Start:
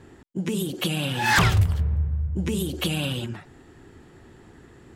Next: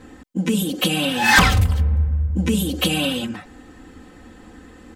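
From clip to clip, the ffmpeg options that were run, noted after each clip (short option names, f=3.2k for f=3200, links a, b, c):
-af "aecho=1:1:3.9:0.94,volume=4dB"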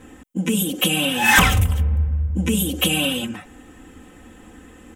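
-af "aexciter=amount=1.1:drive=4.7:freq=2.4k,volume=-1dB"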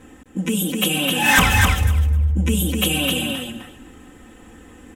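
-af "aecho=1:1:257|514|771:0.631|0.0946|0.0142,volume=-1dB"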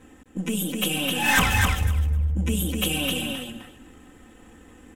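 -af "aeval=exprs='if(lt(val(0),0),0.708*val(0),val(0))':c=same,volume=-4dB"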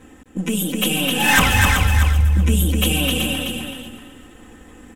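-af "aecho=1:1:377|754|1131:0.473|0.0757|0.0121,volume=5dB"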